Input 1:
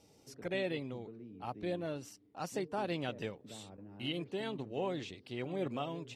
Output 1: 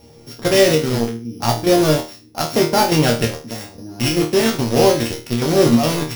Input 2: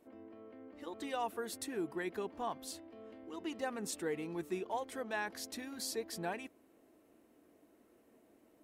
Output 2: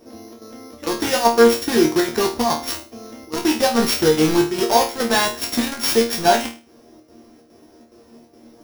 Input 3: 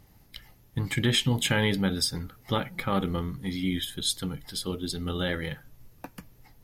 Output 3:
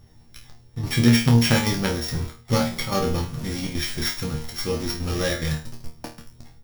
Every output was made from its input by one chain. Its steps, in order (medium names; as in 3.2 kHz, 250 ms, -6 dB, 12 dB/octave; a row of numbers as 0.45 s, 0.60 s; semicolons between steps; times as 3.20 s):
sorted samples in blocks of 8 samples; bass shelf 120 Hz +7 dB; in parallel at -10 dB: companded quantiser 2-bit; on the sum: square tremolo 2.4 Hz, depth 60%, duty 80%; chord resonator D#2 fifth, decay 0.33 s; peak normalisation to -1.5 dBFS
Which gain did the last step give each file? +29.0 dB, +28.5 dB, +14.0 dB